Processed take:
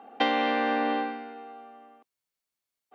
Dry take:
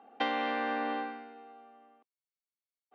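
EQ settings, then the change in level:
dynamic equaliser 1,300 Hz, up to −4 dB, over −48 dBFS, Q 1.1
+8.0 dB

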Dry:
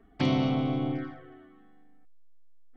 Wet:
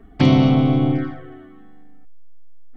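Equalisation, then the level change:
low-shelf EQ 230 Hz +7 dB
+8.5 dB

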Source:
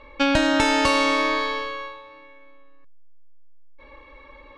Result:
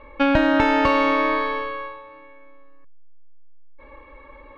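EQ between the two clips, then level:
low-pass filter 2,100 Hz 12 dB per octave
+2.5 dB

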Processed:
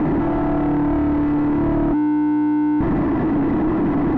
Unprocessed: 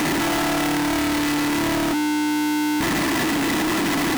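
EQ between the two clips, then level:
low-pass filter 1,100 Hz 12 dB per octave
spectral tilt −2.5 dB per octave
0.0 dB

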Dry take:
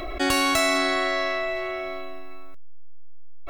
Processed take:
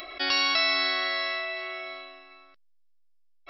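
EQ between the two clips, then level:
linear-phase brick-wall low-pass 5,600 Hz
spectral tilt +4.5 dB per octave
−6.5 dB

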